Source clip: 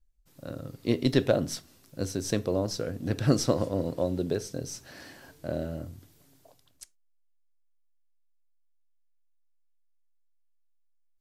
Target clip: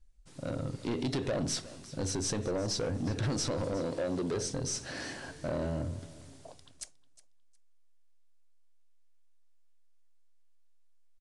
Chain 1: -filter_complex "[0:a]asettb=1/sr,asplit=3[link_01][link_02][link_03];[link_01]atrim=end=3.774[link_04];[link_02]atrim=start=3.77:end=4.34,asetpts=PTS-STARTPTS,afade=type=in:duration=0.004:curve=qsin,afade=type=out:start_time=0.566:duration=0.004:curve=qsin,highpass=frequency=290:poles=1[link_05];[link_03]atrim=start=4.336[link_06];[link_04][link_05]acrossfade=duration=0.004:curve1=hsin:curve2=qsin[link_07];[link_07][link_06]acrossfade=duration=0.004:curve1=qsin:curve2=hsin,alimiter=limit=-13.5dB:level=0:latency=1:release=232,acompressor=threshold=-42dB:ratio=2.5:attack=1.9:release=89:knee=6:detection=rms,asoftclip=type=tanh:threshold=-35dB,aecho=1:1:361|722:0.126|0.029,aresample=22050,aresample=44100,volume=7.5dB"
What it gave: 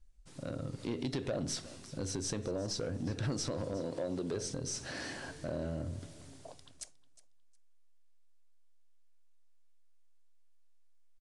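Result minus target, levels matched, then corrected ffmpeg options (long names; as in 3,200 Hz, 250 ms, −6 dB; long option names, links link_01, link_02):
downward compressor: peak gain reduction +7 dB
-filter_complex "[0:a]asettb=1/sr,asplit=3[link_01][link_02][link_03];[link_01]atrim=end=3.774[link_04];[link_02]atrim=start=3.77:end=4.34,asetpts=PTS-STARTPTS,afade=type=in:duration=0.004:curve=qsin,afade=type=out:start_time=0.566:duration=0.004:curve=qsin,highpass=frequency=290:poles=1[link_05];[link_03]atrim=start=4.336[link_06];[link_04][link_05]acrossfade=duration=0.004:curve1=hsin:curve2=qsin[link_07];[link_07][link_06]acrossfade=duration=0.004:curve1=qsin:curve2=hsin,alimiter=limit=-13.5dB:level=0:latency=1:release=232,acompressor=threshold=-30.5dB:ratio=2.5:attack=1.9:release=89:knee=6:detection=rms,asoftclip=type=tanh:threshold=-35dB,aecho=1:1:361|722:0.126|0.029,aresample=22050,aresample=44100,volume=7.5dB"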